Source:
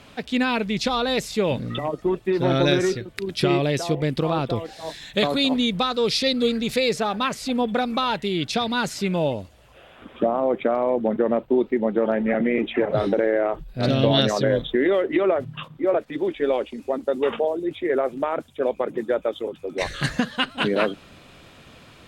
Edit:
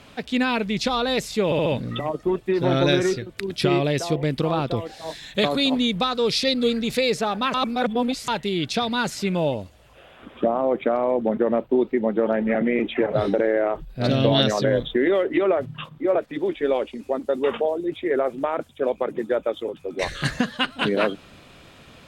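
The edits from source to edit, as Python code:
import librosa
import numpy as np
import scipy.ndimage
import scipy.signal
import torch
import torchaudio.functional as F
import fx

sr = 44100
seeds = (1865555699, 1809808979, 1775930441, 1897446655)

y = fx.edit(x, sr, fx.stutter(start_s=1.45, slice_s=0.07, count=4),
    fx.reverse_span(start_s=7.33, length_s=0.74), tone=tone)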